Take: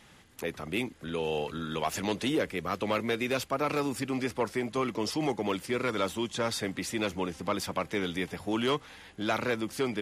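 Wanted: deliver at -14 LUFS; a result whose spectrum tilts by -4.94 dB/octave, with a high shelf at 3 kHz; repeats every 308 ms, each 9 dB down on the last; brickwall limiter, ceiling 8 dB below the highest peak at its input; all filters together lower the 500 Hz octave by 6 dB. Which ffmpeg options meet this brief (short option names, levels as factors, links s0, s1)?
-af "equalizer=f=500:t=o:g=-7.5,highshelf=f=3000:g=-7,alimiter=level_in=1.58:limit=0.0631:level=0:latency=1,volume=0.631,aecho=1:1:308|616|924|1232:0.355|0.124|0.0435|0.0152,volume=15"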